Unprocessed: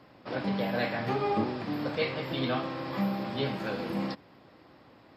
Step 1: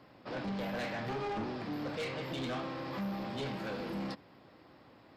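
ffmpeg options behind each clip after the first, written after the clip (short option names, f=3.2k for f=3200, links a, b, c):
-af "asoftclip=type=tanh:threshold=-30.5dB,volume=-2.5dB"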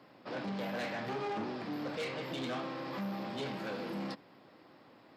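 -af "highpass=150"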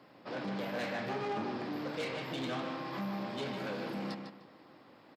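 -filter_complex "[0:a]asplit=2[a][b];[b]adelay=151,lowpass=f=4.8k:p=1,volume=-6dB,asplit=2[c][d];[d]adelay=151,lowpass=f=4.8k:p=1,volume=0.28,asplit=2[e][f];[f]adelay=151,lowpass=f=4.8k:p=1,volume=0.28,asplit=2[g][h];[h]adelay=151,lowpass=f=4.8k:p=1,volume=0.28[i];[a][c][e][g][i]amix=inputs=5:normalize=0"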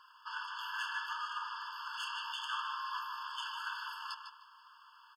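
-af "afftfilt=real='re*eq(mod(floor(b*sr/1024/880),2),1)':imag='im*eq(mod(floor(b*sr/1024/880),2),1)':win_size=1024:overlap=0.75,volume=6dB"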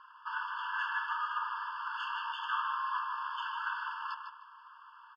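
-af "lowpass=1.9k,volume=6dB"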